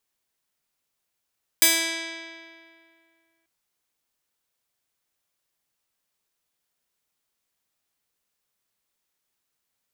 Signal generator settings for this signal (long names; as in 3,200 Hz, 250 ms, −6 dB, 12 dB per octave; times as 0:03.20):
Karplus-Strong string E4, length 1.84 s, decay 2.27 s, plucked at 0.24, bright